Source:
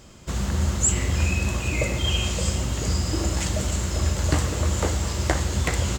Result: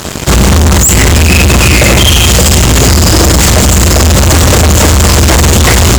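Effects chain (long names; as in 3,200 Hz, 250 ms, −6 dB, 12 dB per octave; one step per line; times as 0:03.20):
high-pass filter 50 Hz 24 dB per octave
fuzz pedal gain 40 dB, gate −47 dBFS
boost into a limiter +13 dB
level −1 dB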